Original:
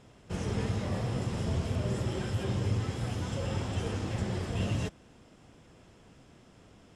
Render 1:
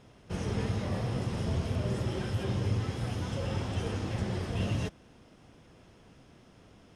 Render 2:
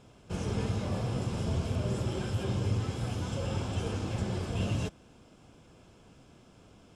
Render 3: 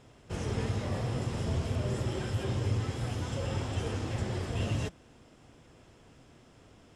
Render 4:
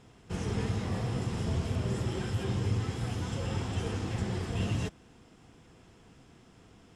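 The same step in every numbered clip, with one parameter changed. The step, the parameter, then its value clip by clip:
notch, frequency: 7500, 1900, 190, 580 Hz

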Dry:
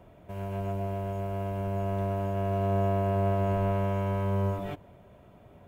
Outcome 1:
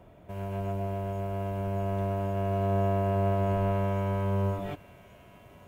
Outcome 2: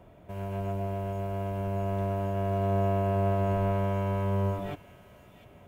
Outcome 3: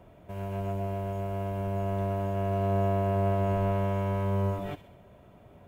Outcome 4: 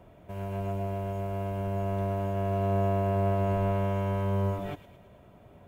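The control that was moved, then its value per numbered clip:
thin delay, time: 1135, 699, 65, 109 ms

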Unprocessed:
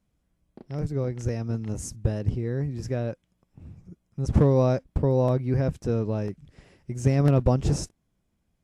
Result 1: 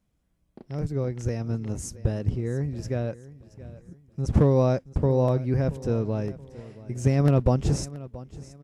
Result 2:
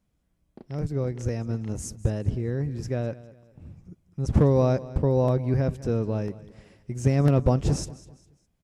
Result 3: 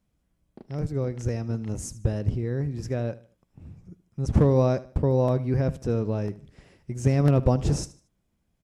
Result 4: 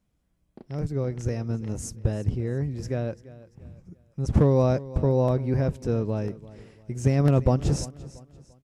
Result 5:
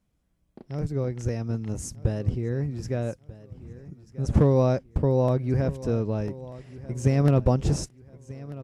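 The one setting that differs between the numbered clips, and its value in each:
feedback echo, time: 677, 203, 76, 342, 1239 ms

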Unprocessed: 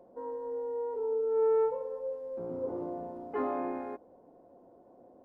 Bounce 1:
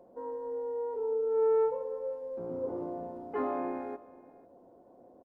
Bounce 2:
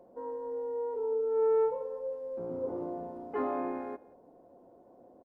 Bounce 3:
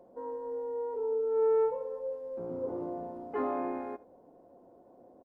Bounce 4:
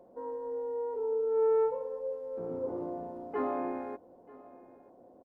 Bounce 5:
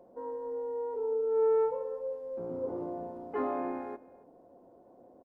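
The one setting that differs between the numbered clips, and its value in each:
echo, time: 492, 176, 77, 936, 276 ms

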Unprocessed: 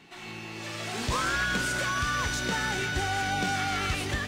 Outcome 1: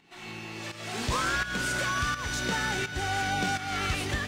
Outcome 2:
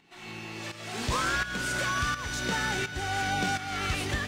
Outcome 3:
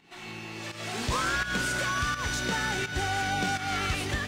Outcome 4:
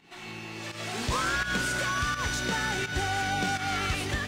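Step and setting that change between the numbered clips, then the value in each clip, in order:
pump, release: 0.347, 0.509, 0.199, 0.135 s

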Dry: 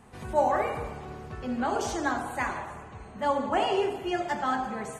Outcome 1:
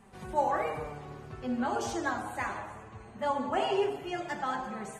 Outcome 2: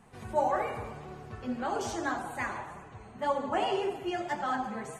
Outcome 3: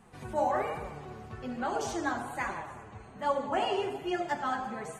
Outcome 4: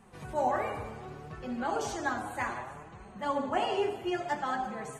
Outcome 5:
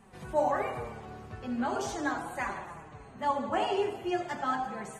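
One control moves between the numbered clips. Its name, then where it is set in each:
flange, rate: 0.2, 1.8, 1.2, 0.65, 0.4 Hz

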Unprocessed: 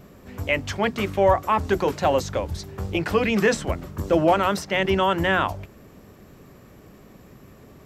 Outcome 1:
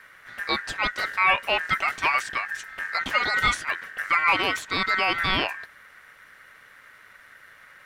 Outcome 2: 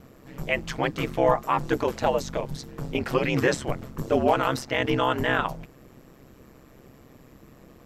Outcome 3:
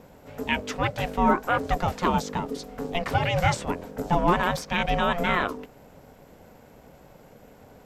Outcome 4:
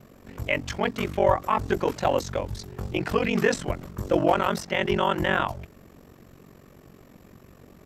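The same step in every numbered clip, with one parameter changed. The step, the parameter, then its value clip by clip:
ring modulator, frequency: 1700, 66, 350, 23 Hz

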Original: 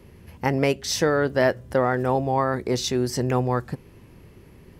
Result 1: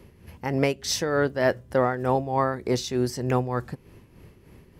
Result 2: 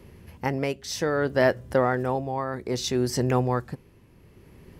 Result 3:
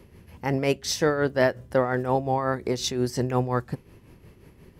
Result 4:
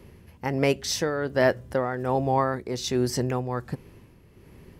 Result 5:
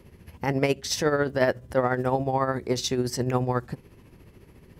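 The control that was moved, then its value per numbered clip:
tremolo, rate: 3.3, 0.62, 5.6, 1.3, 14 Hz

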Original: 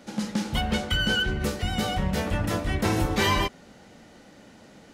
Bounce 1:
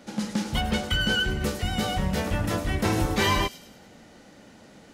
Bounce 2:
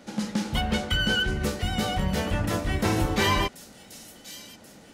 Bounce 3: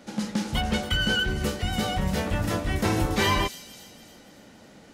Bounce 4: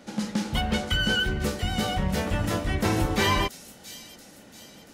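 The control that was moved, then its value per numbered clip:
thin delay, time: 0.103, 1.083, 0.284, 0.682 s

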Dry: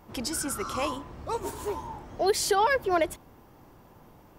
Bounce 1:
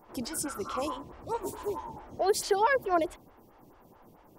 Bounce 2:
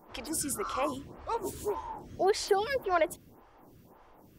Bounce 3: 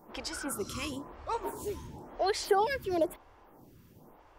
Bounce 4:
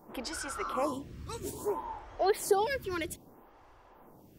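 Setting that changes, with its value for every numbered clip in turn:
photocell phaser, rate: 4.6, 1.8, 0.99, 0.61 Hz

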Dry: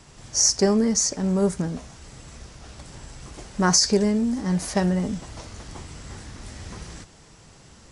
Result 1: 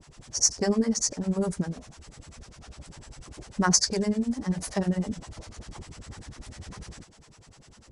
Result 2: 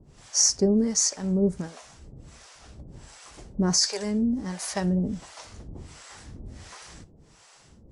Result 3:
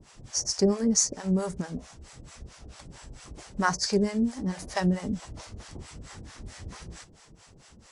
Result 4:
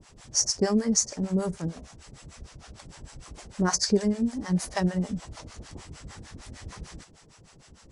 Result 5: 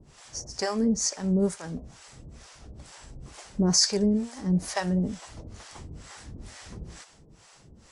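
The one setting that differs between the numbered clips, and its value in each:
harmonic tremolo, rate: 10, 1.4, 4.5, 6.6, 2.2 Hz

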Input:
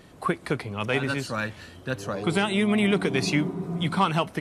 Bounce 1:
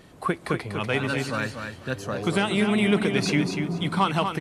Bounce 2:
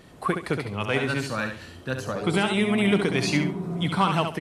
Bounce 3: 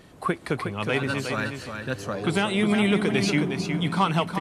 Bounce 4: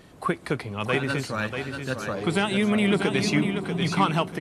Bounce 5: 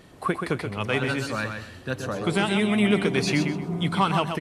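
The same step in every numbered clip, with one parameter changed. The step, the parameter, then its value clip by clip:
feedback echo, time: 242, 69, 363, 639, 128 ms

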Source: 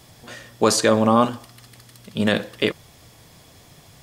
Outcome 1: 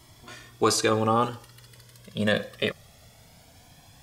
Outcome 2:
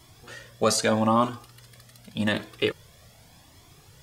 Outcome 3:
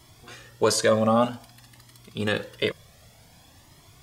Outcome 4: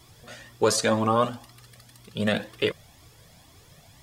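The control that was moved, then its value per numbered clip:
cascading flanger, rate: 0.21, 0.84, 0.53, 2 Hz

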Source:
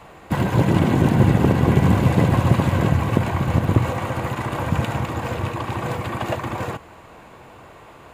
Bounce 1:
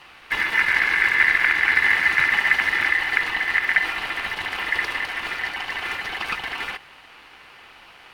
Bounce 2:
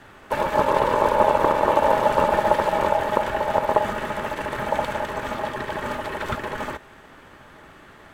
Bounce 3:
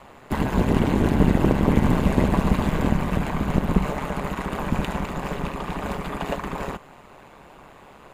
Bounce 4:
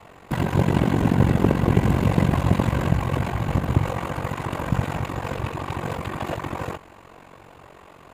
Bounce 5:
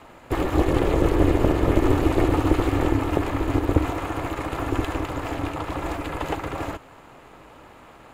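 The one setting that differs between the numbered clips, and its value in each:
ring modulator, frequency: 1900, 730, 70, 23, 190 Hz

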